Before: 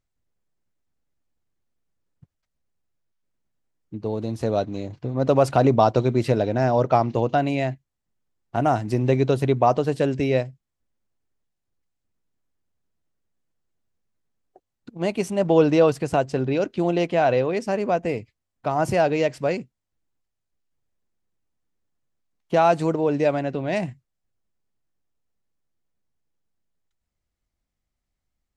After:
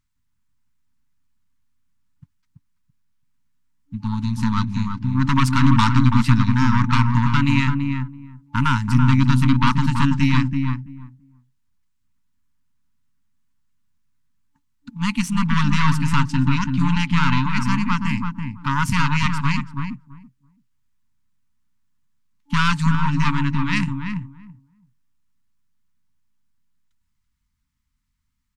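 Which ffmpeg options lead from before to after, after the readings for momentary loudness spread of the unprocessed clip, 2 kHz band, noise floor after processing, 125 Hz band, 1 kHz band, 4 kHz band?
11 LU, +8.5 dB, -71 dBFS, +8.5 dB, +0.5 dB, +9.5 dB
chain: -filter_complex "[0:a]aeval=exprs='0.631*(cos(1*acos(clip(val(0)/0.631,-1,1)))-cos(1*PI/2))+0.0631*(cos(8*acos(clip(val(0)/0.631,-1,1)))-cos(8*PI/2))':c=same,asplit=2[a][b];[b]adelay=333,lowpass=f=940:p=1,volume=-3dB,asplit=2[c][d];[d]adelay=333,lowpass=f=940:p=1,volume=0.17,asplit=2[e][f];[f]adelay=333,lowpass=f=940:p=1,volume=0.17[g];[a][c][e][g]amix=inputs=4:normalize=0,afftfilt=real='re*(1-between(b*sr/4096,290,870))':imag='im*(1-between(b*sr/4096,290,870))':win_size=4096:overlap=0.75,volume=5dB"

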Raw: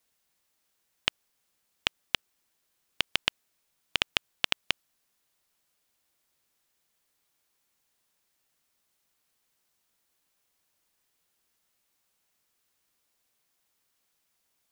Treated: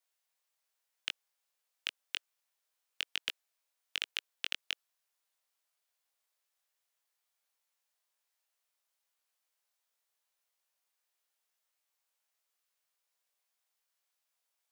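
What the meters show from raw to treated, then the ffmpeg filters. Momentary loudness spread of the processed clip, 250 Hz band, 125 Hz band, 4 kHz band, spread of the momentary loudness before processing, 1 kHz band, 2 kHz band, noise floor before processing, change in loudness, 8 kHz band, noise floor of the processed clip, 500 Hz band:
5 LU, -19.0 dB, under -20 dB, -8.0 dB, 5 LU, -16.0 dB, -8.5 dB, -76 dBFS, -8.5 dB, -6.5 dB, -85 dBFS, -20.5 dB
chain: -filter_complex "[0:a]highpass=f=500:w=0.5412,highpass=f=500:w=1.3066,acrossover=split=1100[a][b];[a]aeval=exprs='(mod(26.6*val(0)+1,2)-1)/26.6':c=same[c];[c][b]amix=inputs=2:normalize=0,flanger=delay=19:depth=3.2:speed=1.2,volume=-5dB"

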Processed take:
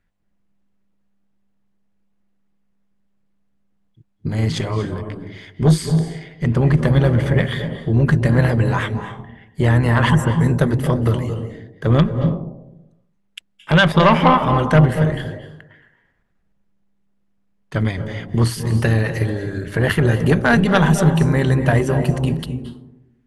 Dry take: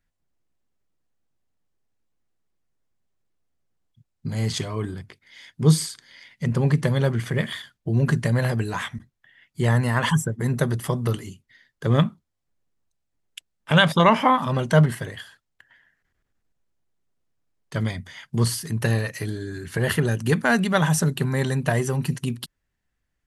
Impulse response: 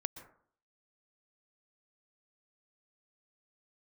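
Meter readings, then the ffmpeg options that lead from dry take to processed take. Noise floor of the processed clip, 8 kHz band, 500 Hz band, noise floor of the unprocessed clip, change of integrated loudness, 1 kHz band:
-64 dBFS, n/a, +5.5 dB, -78 dBFS, +5.5 dB, +4.5 dB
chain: -filter_complex "[0:a]tremolo=f=200:d=0.519,acrossover=split=3400[a][b];[a]aeval=exprs='0.596*sin(PI/2*2*val(0)/0.596)':c=same[c];[c][b]amix=inputs=2:normalize=0[d];[1:a]atrim=start_sample=2205,asetrate=23373,aresample=44100[e];[d][e]afir=irnorm=-1:irlink=0,volume=-3.5dB"

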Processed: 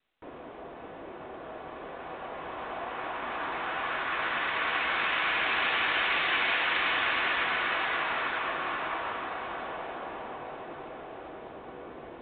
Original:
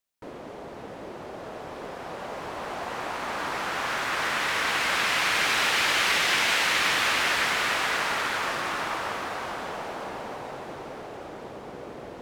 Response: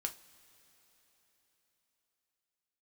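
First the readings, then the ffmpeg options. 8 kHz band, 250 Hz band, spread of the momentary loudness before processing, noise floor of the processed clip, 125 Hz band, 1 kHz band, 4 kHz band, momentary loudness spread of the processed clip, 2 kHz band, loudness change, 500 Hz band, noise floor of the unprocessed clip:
under -40 dB, -4.0 dB, 19 LU, -45 dBFS, -7.5 dB, -2.5 dB, -6.5 dB, 18 LU, -3.0 dB, -4.0 dB, -3.5 dB, -41 dBFS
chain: -filter_complex "[0:a]equalizer=f=1k:w=0.51:g=3.5[a];[1:a]atrim=start_sample=2205,asetrate=79380,aresample=44100[b];[a][b]afir=irnorm=-1:irlink=0" -ar 8000 -c:a pcm_mulaw

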